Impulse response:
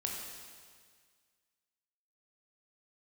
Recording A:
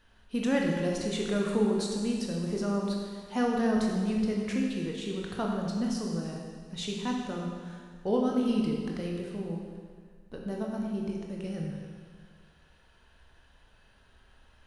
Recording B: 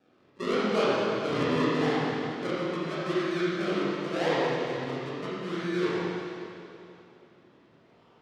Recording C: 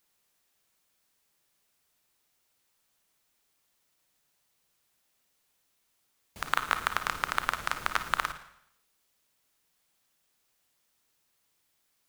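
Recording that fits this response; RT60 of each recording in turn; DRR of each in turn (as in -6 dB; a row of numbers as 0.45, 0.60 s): A; 1.8, 2.7, 0.75 s; -1.0, -9.0, 8.5 dB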